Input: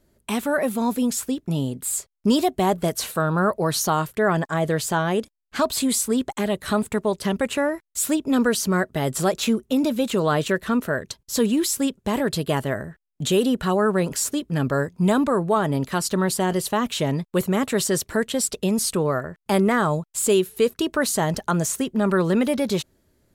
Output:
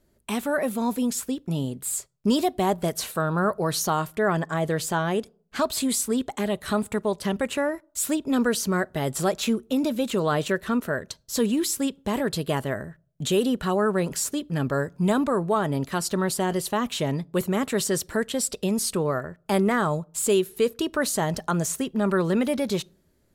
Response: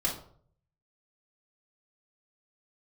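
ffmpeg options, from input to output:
-filter_complex "[0:a]asplit=2[a][b];[1:a]atrim=start_sample=2205,asetrate=48510,aresample=44100[c];[b][c]afir=irnorm=-1:irlink=0,volume=-29.5dB[d];[a][d]amix=inputs=2:normalize=0,volume=-3dB"

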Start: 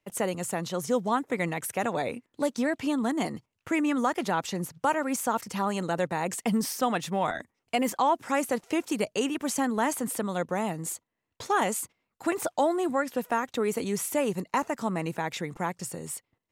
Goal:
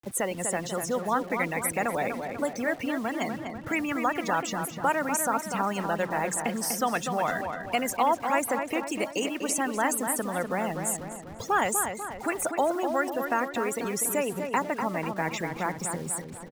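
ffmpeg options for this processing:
-filter_complex "[0:a]aeval=exprs='val(0)+0.5*0.00891*sgn(val(0))':c=same,afftfilt=real='re*gte(hypot(re,im),0.0178)':imag='im*gte(hypot(re,im),0.0178)':win_size=1024:overlap=0.75,equalizer=f=250:t=o:w=1:g=3,equalizer=f=1k:t=o:w=1:g=-5,equalizer=f=4k:t=o:w=1:g=-9,acrossover=split=650[a][b];[a]acompressor=threshold=-41dB:ratio=4[c];[c][b]amix=inputs=2:normalize=0,acrusher=bits=8:mix=0:aa=0.000001,asplit=2[d][e];[e]adelay=246,lowpass=f=2.8k:p=1,volume=-6dB,asplit=2[f][g];[g]adelay=246,lowpass=f=2.8k:p=1,volume=0.54,asplit=2[h][i];[i]adelay=246,lowpass=f=2.8k:p=1,volume=0.54,asplit=2[j][k];[k]adelay=246,lowpass=f=2.8k:p=1,volume=0.54,asplit=2[l][m];[m]adelay=246,lowpass=f=2.8k:p=1,volume=0.54,asplit=2[n][o];[o]adelay=246,lowpass=f=2.8k:p=1,volume=0.54,asplit=2[p][q];[q]adelay=246,lowpass=f=2.8k:p=1,volume=0.54[r];[f][h][j][l][n][p][r]amix=inputs=7:normalize=0[s];[d][s]amix=inputs=2:normalize=0,volume=5.5dB"

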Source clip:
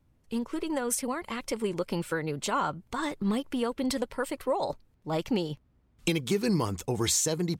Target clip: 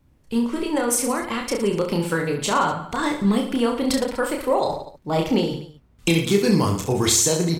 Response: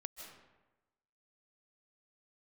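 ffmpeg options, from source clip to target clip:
-af "aecho=1:1:30|67.5|114.4|173|246.2:0.631|0.398|0.251|0.158|0.1,volume=6.5dB"

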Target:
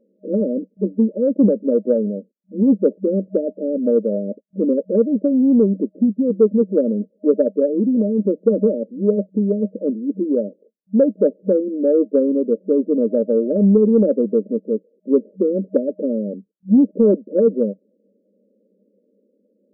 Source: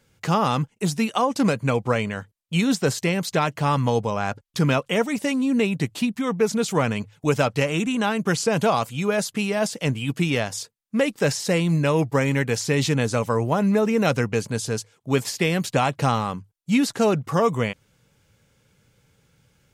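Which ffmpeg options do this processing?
-af "afftfilt=real='re*between(b*sr/4096,190,620)':imag='im*between(b*sr/4096,190,620)':win_size=4096:overlap=0.75,acontrast=40,volume=2dB"

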